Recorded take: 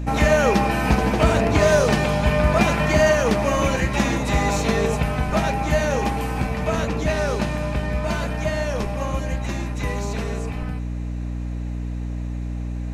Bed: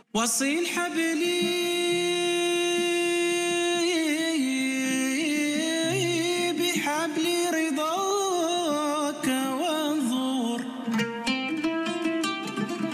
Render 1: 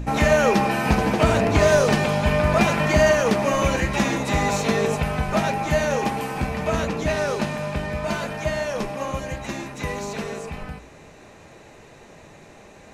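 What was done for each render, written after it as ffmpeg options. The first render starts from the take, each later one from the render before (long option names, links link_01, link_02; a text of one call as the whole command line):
ffmpeg -i in.wav -af "bandreject=frequency=60:width_type=h:width=4,bandreject=frequency=120:width_type=h:width=4,bandreject=frequency=180:width_type=h:width=4,bandreject=frequency=240:width_type=h:width=4,bandreject=frequency=300:width_type=h:width=4" out.wav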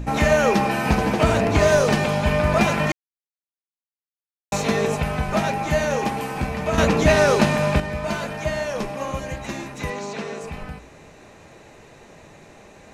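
ffmpeg -i in.wav -filter_complex "[0:a]asettb=1/sr,asplit=3[link_01][link_02][link_03];[link_01]atrim=end=9.904[link_04];[link_02]atrim=start=9.9:end=10.41,asetpts=PTS-STARTPTS,afade=type=in:duration=0.004:curve=qsin,afade=type=out:start_time=0.506:duration=0.004:curve=qsin,highpass=160,lowpass=6900[link_05];[link_03]atrim=start=10.406[link_06];[link_04][link_05]acrossfade=duration=0.004:curve1=hsin:curve2=qsin[link_07];[link_07][link_06]acrossfade=duration=0.004:curve1=qsin:curve2=hsin,asplit=5[link_08][link_09][link_10][link_11][link_12];[link_08]atrim=end=2.92,asetpts=PTS-STARTPTS,afade=type=out:start_time=2.916:duration=0.004:curve=hsin[link_13];[link_09]atrim=start=2.92:end=4.52,asetpts=PTS-STARTPTS,volume=0[link_14];[link_10]atrim=start=4.52:end=6.782,asetpts=PTS-STARTPTS,afade=type=in:duration=0.004:curve=hsin[link_15];[link_11]atrim=start=6.778:end=7.802,asetpts=PTS-STARTPTS,volume=7.5dB[link_16];[link_12]atrim=start=7.798[link_17];[link_13][link_14][link_15]concat=n=3:v=0:a=1[link_18];[link_18][link_16]acrossfade=duration=0.004:curve1=hsin:curve2=hsin[link_19];[link_19][link_17]acrossfade=duration=0.004:curve1=hsin:curve2=hsin" out.wav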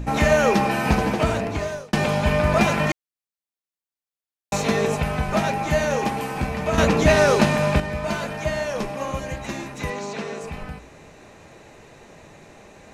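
ffmpeg -i in.wav -filter_complex "[0:a]asplit=2[link_01][link_02];[link_01]atrim=end=1.93,asetpts=PTS-STARTPTS,afade=type=out:start_time=0.97:duration=0.96[link_03];[link_02]atrim=start=1.93,asetpts=PTS-STARTPTS,afade=type=in:duration=0.004:curve=hsin[link_04];[link_03][link_04]concat=n=2:v=0:a=1" out.wav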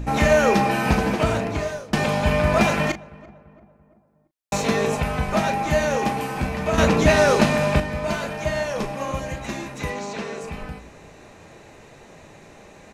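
ffmpeg -i in.wav -filter_complex "[0:a]asplit=2[link_01][link_02];[link_02]adelay=36,volume=-11.5dB[link_03];[link_01][link_03]amix=inputs=2:normalize=0,asplit=2[link_04][link_05];[link_05]adelay=339,lowpass=frequency=1400:poles=1,volume=-21.5dB,asplit=2[link_06][link_07];[link_07]adelay=339,lowpass=frequency=1400:poles=1,volume=0.52,asplit=2[link_08][link_09];[link_09]adelay=339,lowpass=frequency=1400:poles=1,volume=0.52,asplit=2[link_10][link_11];[link_11]adelay=339,lowpass=frequency=1400:poles=1,volume=0.52[link_12];[link_04][link_06][link_08][link_10][link_12]amix=inputs=5:normalize=0" out.wav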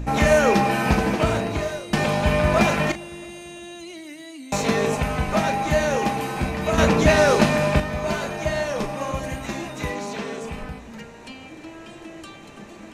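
ffmpeg -i in.wav -i bed.wav -filter_complex "[1:a]volume=-13.5dB[link_01];[0:a][link_01]amix=inputs=2:normalize=0" out.wav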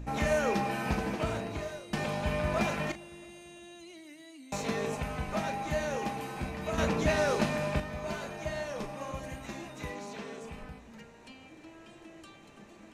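ffmpeg -i in.wav -af "volume=-11.5dB" out.wav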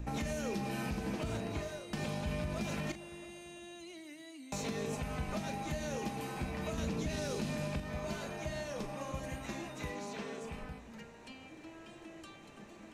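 ffmpeg -i in.wav -filter_complex "[0:a]acrossover=split=400|3000[link_01][link_02][link_03];[link_02]acompressor=threshold=-41dB:ratio=6[link_04];[link_01][link_04][link_03]amix=inputs=3:normalize=0,alimiter=level_in=3.5dB:limit=-24dB:level=0:latency=1:release=105,volume=-3.5dB" out.wav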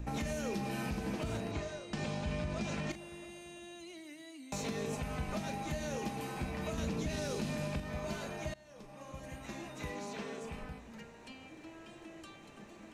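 ffmpeg -i in.wav -filter_complex "[0:a]asettb=1/sr,asplit=3[link_01][link_02][link_03];[link_01]atrim=end=1.514[link_04];[link_02]atrim=start=1.51:end=2.91,asetpts=PTS-STARTPTS,afade=type=in:duration=0.004:curve=qsin,afade=type=out:start_time=1.396:duration=0.004:curve=qsin,lowpass=frequency=8300:width=0.5412,lowpass=frequency=8300:width=1.3066[link_05];[link_03]atrim=start=2.906[link_06];[link_04][link_05]acrossfade=duration=0.004:curve1=hsin:curve2=qsin[link_07];[link_07][link_06]acrossfade=duration=0.004:curve1=qsin:curve2=hsin,asplit=2[link_08][link_09];[link_08]atrim=end=8.54,asetpts=PTS-STARTPTS,afade=type=out:start_time=8.536:duration=0.004:curve=hsin:silence=0.0707946[link_10];[link_09]atrim=start=8.54,asetpts=PTS-STARTPTS,afade=type=in:duration=1.43:silence=0.0707946[link_11];[link_10][link_11]concat=n=2:v=0:a=1" out.wav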